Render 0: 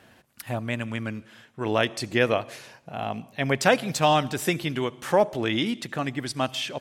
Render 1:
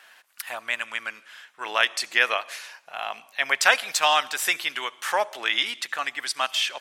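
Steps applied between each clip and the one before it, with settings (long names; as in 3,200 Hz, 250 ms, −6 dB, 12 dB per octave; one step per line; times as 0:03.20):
Chebyshev high-pass filter 1,300 Hz, order 2
level +6.5 dB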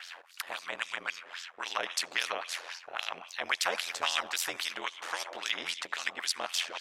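auto-filter band-pass sine 3.7 Hz 470–5,400 Hz
ring modulation 43 Hz
every bin compressed towards the loudest bin 2 to 1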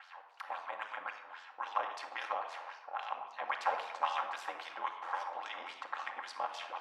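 resonant band-pass 890 Hz, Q 2.9
convolution reverb RT60 0.80 s, pre-delay 4 ms, DRR 3 dB
level +3.5 dB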